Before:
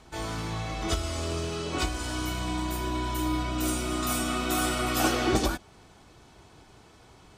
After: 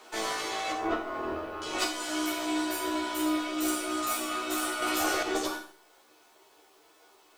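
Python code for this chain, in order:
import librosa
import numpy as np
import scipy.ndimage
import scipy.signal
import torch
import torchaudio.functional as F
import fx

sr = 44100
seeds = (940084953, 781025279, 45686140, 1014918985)

y = scipy.signal.sosfilt(scipy.signal.butter(6, 320.0, 'highpass', fs=sr, output='sos'), x)
y = fx.dereverb_blind(y, sr, rt60_s=0.51)
y = fx.lowpass(y, sr, hz=1100.0, slope=12, at=(0.72, 1.62))
y = fx.rider(y, sr, range_db=10, speed_s=0.5)
y = fx.cheby_harmonics(y, sr, harmonics=(3, 6), levels_db=(-20, -24), full_scale_db=-15.5)
y = fx.quant_dither(y, sr, seeds[0], bits=12, dither='triangular')
y = fx.doubler(y, sr, ms=13.0, db=-2)
y = fx.rev_schroeder(y, sr, rt60_s=0.56, comb_ms=26, drr_db=3.5)
y = fx.env_flatten(y, sr, amount_pct=70, at=(4.82, 5.23))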